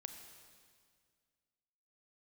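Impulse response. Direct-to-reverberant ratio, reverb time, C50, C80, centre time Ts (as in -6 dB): 6.0 dB, 2.0 s, 7.0 dB, 7.5 dB, 35 ms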